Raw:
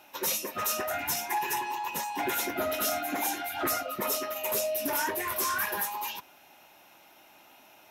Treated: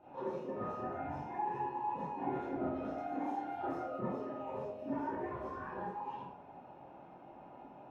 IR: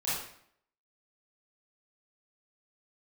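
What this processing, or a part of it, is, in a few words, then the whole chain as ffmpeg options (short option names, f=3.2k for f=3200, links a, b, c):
television next door: -filter_complex "[0:a]acompressor=threshold=-42dB:ratio=3,lowpass=570[a];[1:a]atrim=start_sample=2205[b];[a][b]afir=irnorm=-1:irlink=0,asettb=1/sr,asplit=3[c][d][e];[c]atrim=end=2.984[f];[d]atrim=start=2.98:end=4,asetpts=PTS-STARTPTS,afade=t=in:d=0.004:c=qsin,afade=t=out:st=1.016:d=0.004:c=qsin,bass=f=250:g=-7,treble=f=4k:g=8[g];[e]atrim=start=3.996[h];[f][g]acrossfade=d=0.004:c1=hsin:c2=qsin[i];[i][h]acrossfade=d=0.004:c1=qsin:c2=hsin,volume=4.5dB"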